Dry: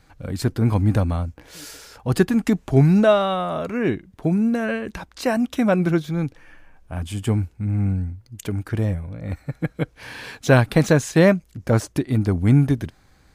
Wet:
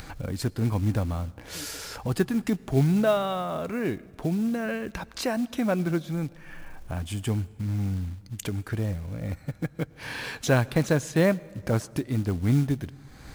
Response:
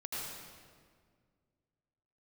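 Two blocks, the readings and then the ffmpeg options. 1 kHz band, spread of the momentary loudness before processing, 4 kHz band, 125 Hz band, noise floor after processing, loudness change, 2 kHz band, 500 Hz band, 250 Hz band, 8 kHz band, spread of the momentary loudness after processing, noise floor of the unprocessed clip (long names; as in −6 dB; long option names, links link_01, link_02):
−6.5 dB, 16 LU, −3.5 dB, −6.5 dB, −50 dBFS, −7.0 dB, −6.0 dB, −7.0 dB, −6.5 dB, −2.5 dB, 12 LU, −56 dBFS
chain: -filter_complex "[0:a]acrusher=bits=6:mode=log:mix=0:aa=0.000001,acompressor=mode=upward:threshold=-18dB:ratio=2.5,asplit=2[link_01][link_02];[1:a]atrim=start_sample=2205,adelay=18[link_03];[link_02][link_03]afir=irnorm=-1:irlink=0,volume=-23.5dB[link_04];[link_01][link_04]amix=inputs=2:normalize=0,volume=-7dB"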